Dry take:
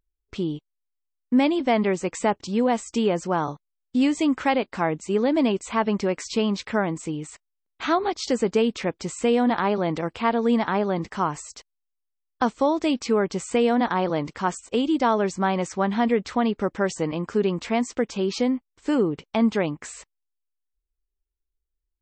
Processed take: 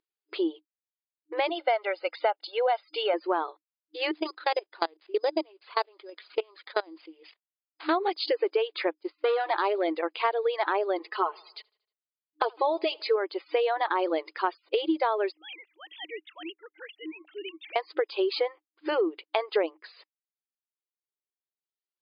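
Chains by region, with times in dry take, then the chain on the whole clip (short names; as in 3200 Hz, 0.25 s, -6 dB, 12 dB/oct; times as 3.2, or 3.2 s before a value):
1.49–3.14 bell 370 Hz -6 dB 0.37 oct + comb 1.4 ms
4.11–7.89 sample sorter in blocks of 8 samples + HPF 290 Hz + level quantiser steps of 22 dB
8.95–9.98 expander -28 dBFS + overloaded stage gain 17.5 dB
10.98–13.16 dynamic EQ 1800 Hz, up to -6 dB, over -40 dBFS, Q 1.4 + comb 4.7 ms, depth 63% + feedback echo 78 ms, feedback 50%, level -18 dB
15.32–17.76 sine-wave speech + EQ curve 250 Hz 0 dB, 400 Hz -25 dB, 1200 Hz -23 dB, 2900 Hz 0 dB
19.49–19.92 expander -39 dBFS + dynamic EQ 530 Hz, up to +6 dB, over -34 dBFS, Q 0.85
whole clip: FFT band-pass 310–5000 Hz; reverb removal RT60 1.7 s; compressor, threshold -25 dBFS; gain +3 dB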